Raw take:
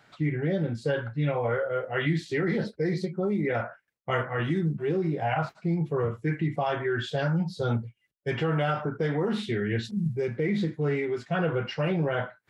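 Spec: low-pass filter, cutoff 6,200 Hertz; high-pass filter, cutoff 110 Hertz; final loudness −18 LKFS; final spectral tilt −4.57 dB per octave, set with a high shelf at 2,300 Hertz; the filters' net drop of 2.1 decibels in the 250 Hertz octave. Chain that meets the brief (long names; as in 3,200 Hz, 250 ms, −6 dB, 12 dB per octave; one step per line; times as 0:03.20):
high-pass filter 110 Hz
low-pass filter 6,200 Hz
parametric band 250 Hz −3 dB
high-shelf EQ 2,300 Hz +8.5 dB
level +11 dB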